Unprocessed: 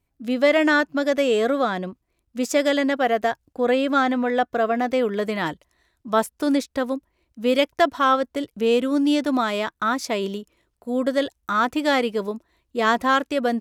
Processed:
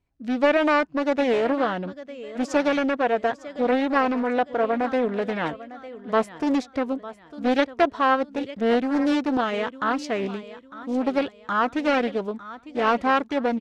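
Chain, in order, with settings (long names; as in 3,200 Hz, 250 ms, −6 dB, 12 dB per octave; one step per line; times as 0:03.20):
high-frequency loss of the air 87 metres
repeating echo 903 ms, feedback 35%, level −16 dB
highs frequency-modulated by the lows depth 0.4 ms
level −1.5 dB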